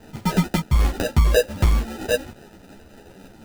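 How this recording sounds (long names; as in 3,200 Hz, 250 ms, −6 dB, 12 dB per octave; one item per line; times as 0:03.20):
a quantiser's noise floor 8 bits, dither none
phaser sweep stages 2, 3.8 Hz, lowest notch 420–2,600 Hz
aliases and images of a low sample rate 1,100 Hz, jitter 0%
a shimmering, thickened sound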